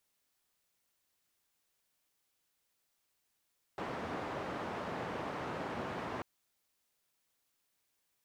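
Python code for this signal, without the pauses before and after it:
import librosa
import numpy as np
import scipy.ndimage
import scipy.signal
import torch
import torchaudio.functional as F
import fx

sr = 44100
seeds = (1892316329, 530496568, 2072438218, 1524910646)

y = fx.band_noise(sr, seeds[0], length_s=2.44, low_hz=100.0, high_hz=1000.0, level_db=-40.0)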